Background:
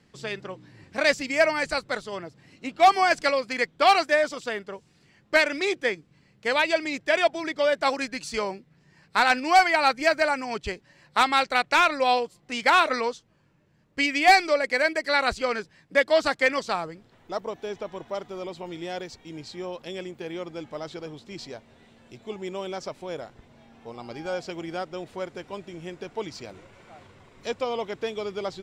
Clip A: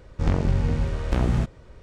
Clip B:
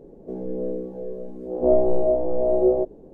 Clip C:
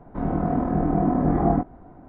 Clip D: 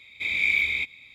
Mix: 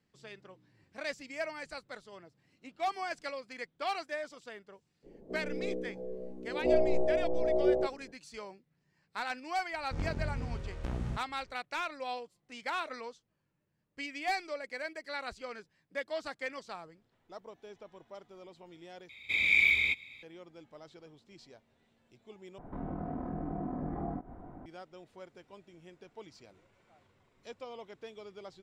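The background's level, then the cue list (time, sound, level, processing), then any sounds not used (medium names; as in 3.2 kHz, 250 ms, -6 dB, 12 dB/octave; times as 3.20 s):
background -16.5 dB
5.02 s: add B -8.5 dB, fades 0.05 s
9.72 s: add A -14 dB
19.09 s: replace with D -2 dB
22.58 s: replace with C -2.5 dB + compression 2.5:1, threshold -38 dBFS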